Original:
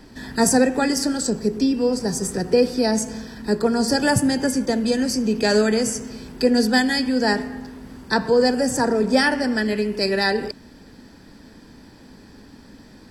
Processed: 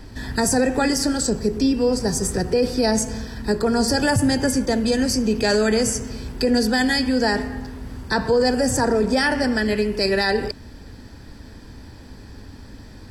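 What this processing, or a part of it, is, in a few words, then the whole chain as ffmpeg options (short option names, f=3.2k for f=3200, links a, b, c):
car stereo with a boomy subwoofer: -af "lowshelf=f=130:t=q:w=1.5:g=8.5,alimiter=limit=-13dB:level=0:latency=1:release=24,volume=2.5dB"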